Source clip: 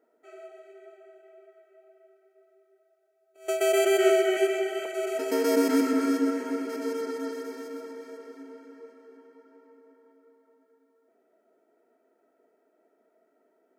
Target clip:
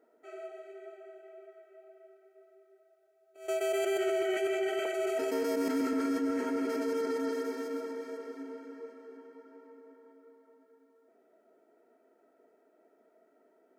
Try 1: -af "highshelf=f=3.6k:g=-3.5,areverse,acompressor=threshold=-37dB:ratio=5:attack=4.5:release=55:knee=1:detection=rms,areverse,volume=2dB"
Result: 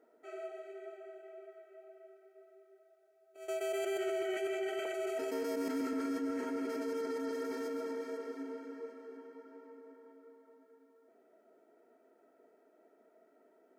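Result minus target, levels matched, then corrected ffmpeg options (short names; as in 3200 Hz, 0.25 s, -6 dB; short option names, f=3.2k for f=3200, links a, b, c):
compressor: peak gain reduction +5 dB
-af "highshelf=f=3.6k:g=-3.5,areverse,acompressor=threshold=-30.5dB:ratio=5:attack=4.5:release=55:knee=1:detection=rms,areverse,volume=2dB"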